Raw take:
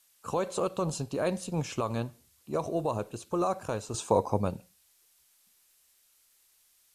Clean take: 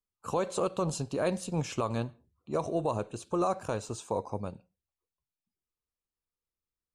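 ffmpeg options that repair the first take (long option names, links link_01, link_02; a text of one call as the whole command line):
ffmpeg -i in.wav -af "agate=range=-21dB:threshold=-58dB,asetnsamples=nb_out_samples=441:pad=0,asendcmd='3.94 volume volume -7.5dB',volume=0dB" out.wav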